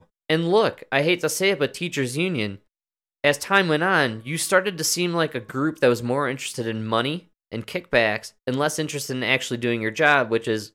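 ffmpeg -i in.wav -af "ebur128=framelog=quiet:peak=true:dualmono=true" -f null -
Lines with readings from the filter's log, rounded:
Integrated loudness:
  I:         -19.3 LUFS
  Threshold: -29.5 LUFS
Loudness range:
  LRA:         2.9 LU
  Threshold: -39.9 LUFS
  LRA low:   -21.4 LUFS
  LRA high:  -18.5 LUFS
True peak:
  Peak:       -3.9 dBFS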